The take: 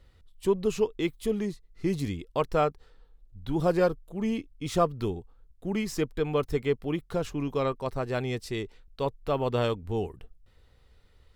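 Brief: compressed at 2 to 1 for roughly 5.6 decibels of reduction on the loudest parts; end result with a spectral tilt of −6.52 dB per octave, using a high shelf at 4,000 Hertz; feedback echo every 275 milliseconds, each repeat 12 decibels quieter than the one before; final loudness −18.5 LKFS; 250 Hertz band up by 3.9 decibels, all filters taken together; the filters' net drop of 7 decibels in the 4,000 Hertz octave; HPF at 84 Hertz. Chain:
high-pass filter 84 Hz
parametric band 250 Hz +5.5 dB
high-shelf EQ 4,000 Hz −3.5 dB
parametric band 4,000 Hz −7.5 dB
downward compressor 2 to 1, threshold −28 dBFS
repeating echo 275 ms, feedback 25%, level −12 dB
level +13 dB

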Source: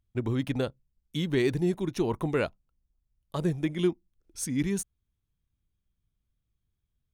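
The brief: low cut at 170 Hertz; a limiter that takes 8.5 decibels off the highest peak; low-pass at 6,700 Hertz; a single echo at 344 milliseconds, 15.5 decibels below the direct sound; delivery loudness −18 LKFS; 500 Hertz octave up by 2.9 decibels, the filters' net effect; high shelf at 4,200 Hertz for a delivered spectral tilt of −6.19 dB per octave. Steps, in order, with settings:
high-pass filter 170 Hz
low-pass filter 6,700 Hz
parametric band 500 Hz +4.5 dB
high-shelf EQ 4,200 Hz −4 dB
brickwall limiter −22 dBFS
single-tap delay 344 ms −15.5 dB
level +15 dB

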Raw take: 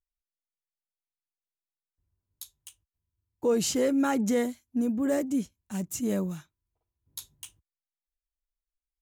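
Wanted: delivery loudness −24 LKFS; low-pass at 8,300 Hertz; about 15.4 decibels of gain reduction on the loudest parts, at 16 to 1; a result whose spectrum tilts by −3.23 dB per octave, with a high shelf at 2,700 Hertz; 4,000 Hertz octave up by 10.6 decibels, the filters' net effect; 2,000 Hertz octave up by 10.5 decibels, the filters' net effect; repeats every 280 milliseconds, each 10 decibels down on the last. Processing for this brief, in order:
low-pass filter 8,300 Hz
parametric band 2,000 Hz +9 dB
high-shelf EQ 2,700 Hz +5.5 dB
parametric band 4,000 Hz +6.5 dB
downward compressor 16 to 1, threshold −35 dBFS
repeating echo 280 ms, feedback 32%, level −10 dB
level +16 dB

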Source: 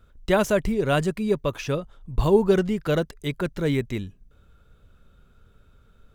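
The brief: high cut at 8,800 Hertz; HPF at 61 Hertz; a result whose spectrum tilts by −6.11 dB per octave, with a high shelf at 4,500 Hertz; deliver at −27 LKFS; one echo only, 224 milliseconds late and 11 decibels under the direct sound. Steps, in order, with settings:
high-pass filter 61 Hz
low-pass filter 8,800 Hz
high-shelf EQ 4,500 Hz −4.5 dB
single-tap delay 224 ms −11 dB
level −3 dB

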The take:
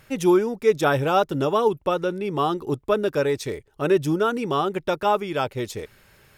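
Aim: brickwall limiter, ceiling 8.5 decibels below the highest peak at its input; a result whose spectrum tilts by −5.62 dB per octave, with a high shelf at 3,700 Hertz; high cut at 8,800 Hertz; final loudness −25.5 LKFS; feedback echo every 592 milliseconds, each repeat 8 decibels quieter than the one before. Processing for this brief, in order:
low-pass filter 8,800 Hz
high-shelf EQ 3,700 Hz −5 dB
brickwall limiter −16.5 dBFS
repeating echo 592 ms, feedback 40%, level −8 dB
level +0.5 dB

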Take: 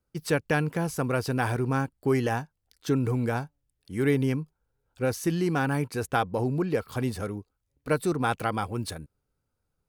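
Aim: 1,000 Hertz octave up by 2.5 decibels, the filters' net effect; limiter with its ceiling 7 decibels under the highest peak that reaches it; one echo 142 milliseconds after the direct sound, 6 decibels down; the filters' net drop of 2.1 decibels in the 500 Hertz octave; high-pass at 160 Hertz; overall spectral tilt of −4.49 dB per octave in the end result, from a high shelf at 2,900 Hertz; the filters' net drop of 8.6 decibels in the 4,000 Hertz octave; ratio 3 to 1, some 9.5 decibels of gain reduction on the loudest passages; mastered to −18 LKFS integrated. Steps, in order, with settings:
high-pass filter 160 Hz
parametric band 500 Hz −3.5 dB
parametric band 1,000 Hz +6 dB
high-shelf EQ 2,900 Hz −7 dB
parametric band 4,000 Hz −6 dB
downward compressor 3 to 1, threshold −33 dBFS
brickwall limiter −24.5 dBFS
single-tap delay 142 ms −6 dB
level +19.5 dB

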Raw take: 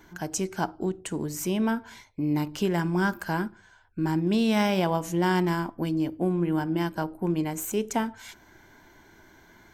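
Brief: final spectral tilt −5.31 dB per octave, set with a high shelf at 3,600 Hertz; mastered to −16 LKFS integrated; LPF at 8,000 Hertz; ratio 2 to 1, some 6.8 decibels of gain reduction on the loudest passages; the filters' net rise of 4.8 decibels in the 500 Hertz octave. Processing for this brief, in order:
low-pass filter 8,000 Hz
parametric band 500 Hz +7 dB
high-shelf EQ 3,600 Hz +4 dB
downward compressor 2 to 1, threshold −30 dBFS
level +15 dB

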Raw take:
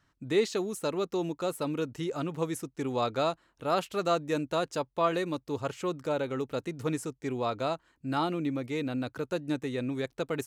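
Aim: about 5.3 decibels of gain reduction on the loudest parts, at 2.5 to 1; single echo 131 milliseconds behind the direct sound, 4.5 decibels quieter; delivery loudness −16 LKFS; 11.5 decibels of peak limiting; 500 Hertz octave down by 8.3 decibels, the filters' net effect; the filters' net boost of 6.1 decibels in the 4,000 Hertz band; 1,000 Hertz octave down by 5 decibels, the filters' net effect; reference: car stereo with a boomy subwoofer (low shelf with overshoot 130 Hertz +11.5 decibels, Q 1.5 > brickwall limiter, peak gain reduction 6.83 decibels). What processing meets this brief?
parametric band 500 Hz −9 dB
parametric band 1,000 Hz −4 dB
parametric band 4,000 Hz +7 dB
downward compressor 2.5 to 1, threshold −34 dBFS
brickwall limiter −35 dBFS
low shelf with overshoot 130 Hz +11.5 dB, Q 1.5
single-tap delay 131 ms −4.5 dB
level +27 dB
brickwall limiter −7 dBFS

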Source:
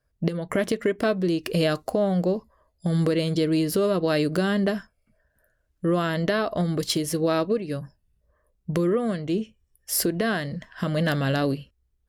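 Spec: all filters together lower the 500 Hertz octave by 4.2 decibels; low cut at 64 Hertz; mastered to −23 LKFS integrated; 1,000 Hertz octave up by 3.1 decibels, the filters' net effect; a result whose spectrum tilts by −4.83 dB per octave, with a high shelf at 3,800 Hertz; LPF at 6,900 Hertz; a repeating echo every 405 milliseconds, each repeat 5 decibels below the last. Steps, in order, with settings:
high-pass filter 64 Hz
low-pass filter 6,900 Hz
parametric band 500 Hz −7.5 dB
parametric band 1,000 Hz +6 dB
high-shelf EQ 3,800 Hz +7.5 dB
repeating echo 405 ms, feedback 56%, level −5 dB
level +2 dB

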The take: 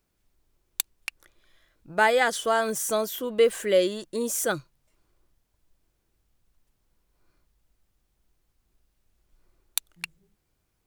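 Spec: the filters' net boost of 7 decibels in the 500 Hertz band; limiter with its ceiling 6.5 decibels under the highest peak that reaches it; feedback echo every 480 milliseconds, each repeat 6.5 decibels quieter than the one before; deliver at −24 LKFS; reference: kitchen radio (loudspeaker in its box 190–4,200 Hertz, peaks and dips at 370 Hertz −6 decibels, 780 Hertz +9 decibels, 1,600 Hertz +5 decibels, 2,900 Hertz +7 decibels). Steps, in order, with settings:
parametric band 500 Hz +8 dB
brickwall limiter −10.5 dBFS
loudspeaker in its box 190–4,200 Hz, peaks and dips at 370 Hz −6 dB, 780 Hz +9 dB, 1,600 Hz +5 dB, 2,900 Hz +7 dB
repeating echo 480 ms, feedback 47%, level −6.5 dB
level −3.5 dB

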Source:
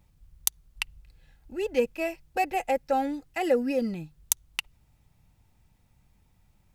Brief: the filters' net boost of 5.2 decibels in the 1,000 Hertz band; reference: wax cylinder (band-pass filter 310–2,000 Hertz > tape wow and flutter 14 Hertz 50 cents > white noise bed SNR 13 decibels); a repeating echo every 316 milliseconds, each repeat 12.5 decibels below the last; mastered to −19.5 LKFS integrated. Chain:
band-pass filter 310–2,000 Hz
parametric band 1,000 Hz +8.5 dB
repeating echo 316 ms, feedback 24%, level −12.5 dB
tape wow and flutter 14 Hz 50 cents
white noise bed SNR 13 dB
level +9 dB

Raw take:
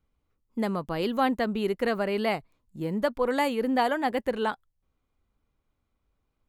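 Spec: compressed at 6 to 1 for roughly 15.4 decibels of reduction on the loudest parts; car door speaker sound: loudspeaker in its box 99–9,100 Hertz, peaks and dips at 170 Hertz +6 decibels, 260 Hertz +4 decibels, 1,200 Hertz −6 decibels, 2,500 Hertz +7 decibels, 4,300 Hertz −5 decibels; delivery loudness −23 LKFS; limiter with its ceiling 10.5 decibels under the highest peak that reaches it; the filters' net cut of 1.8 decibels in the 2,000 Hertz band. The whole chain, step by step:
parametric band 2,000 Hz −3.5 dB
downward compressor 6 to 1, threshold −38 dBFS
brickwall limiter −36 dBFS
loudspeaker in its box 99–9,100 Hz, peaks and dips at 170 Hz +6 dB, 260 Hz +4 dB, 1,200 Hz −6 dB, 2,500 Hz +7 dB, 4,300 Hz −5 dB
level +20.5 dB

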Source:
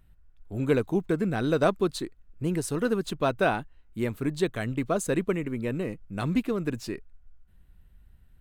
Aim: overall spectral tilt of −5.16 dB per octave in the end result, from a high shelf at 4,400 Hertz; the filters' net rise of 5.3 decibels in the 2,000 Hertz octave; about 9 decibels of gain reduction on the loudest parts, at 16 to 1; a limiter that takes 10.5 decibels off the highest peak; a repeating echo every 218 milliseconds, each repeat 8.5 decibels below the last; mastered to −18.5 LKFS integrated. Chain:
parametric band 2,000 Hz +7 dB
high-shelf EQ 4,400 Hz +3.5 dB
downward compressor 16 to 1, threshold −26 dBFS
brickwall limiter −27 dBFS
repeating echo 218 ms, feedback 38%, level −8.5 dB
level +18 dB

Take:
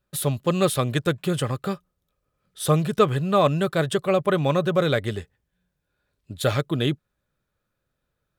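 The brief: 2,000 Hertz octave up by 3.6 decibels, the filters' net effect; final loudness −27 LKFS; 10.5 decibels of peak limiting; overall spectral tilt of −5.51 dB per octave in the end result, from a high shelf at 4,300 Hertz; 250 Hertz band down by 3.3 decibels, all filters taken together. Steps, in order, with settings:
parametric band 250 Hz −6 dB
parametric band 2,000 Hz +6.5 dB
high-shelf EQ 4,300 Hz −6.5 dB
level +1 dB
brickwall limiter −16 dBFS

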